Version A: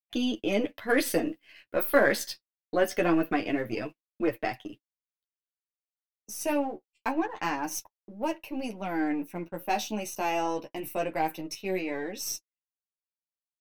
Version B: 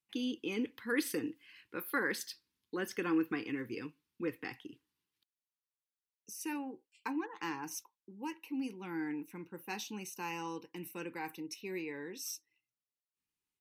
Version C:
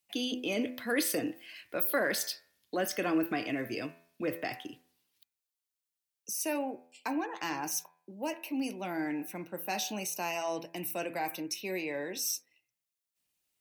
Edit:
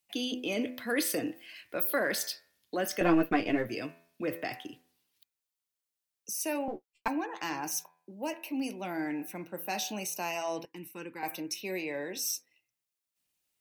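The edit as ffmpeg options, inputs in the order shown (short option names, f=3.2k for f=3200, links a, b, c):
-filter_complex "[0:a]asplit=2[a][b];[2:a]asplit=4[c][d][e][f];[c]atrim=end=3.012[g];[a]atrim=start=3.008:end=3.692[h];[d]atrim=start=3.688:end=6.682[i];[b]atrim=start=6.678:end=7.082[j];[e]atrim=start=7.078:end=10.652[k];[1:a]atrim=start=10.648:end=11.232[l];[f]atrim=start=11.228[m];[g][h]acrossfade=d=0.004:c1=hsin:c2=hsin[n];[n][i]acrossfade=d=0.004:c1=hsin:c2=hsin[o];[o][j]acrossfade=d=0.004:c1=hsin:c2=hsin[p];[p][k]acrossfade=d=0.004:c1=hsin:c2=hsin[q];[q][l]acrossfade=d=0.004:c1=hsin:c2=hsin[r];[r][m]acrossfade=d=0.004:c1=hsin:c2=hsin"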